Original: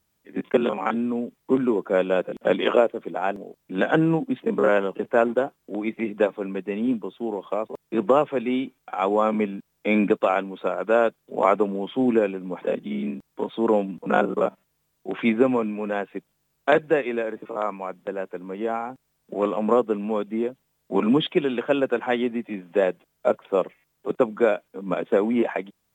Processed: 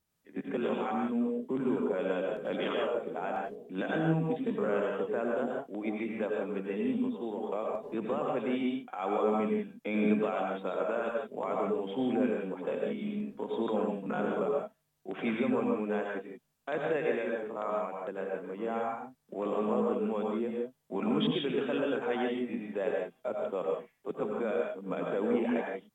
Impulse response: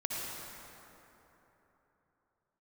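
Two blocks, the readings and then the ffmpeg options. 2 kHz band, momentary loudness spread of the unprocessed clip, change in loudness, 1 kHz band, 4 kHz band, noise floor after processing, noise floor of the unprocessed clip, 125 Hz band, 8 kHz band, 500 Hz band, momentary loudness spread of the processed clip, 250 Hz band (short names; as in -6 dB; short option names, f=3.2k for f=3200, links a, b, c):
-9.5 dB, 10 LU, -8.5 dB, -9.0 dB, -7.0 dB, -74 dBFS, -73 dBFS, -5.5 dB, n/a, -8.5 dB, 8 LU, -7.5 dB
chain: -filter_complex "[0:a]alimiter=limit=-15.5dB:level=0:latency=1:release=16[a];[1:a]atrim=start_sample=2205,afade=t=out:st=0.18:d=0.01,atrim=end_sample=8379,asetrate=30870,aresample=44100[b];[a][b]afir=irnorm=-1:irlink=0,volume=-9dB"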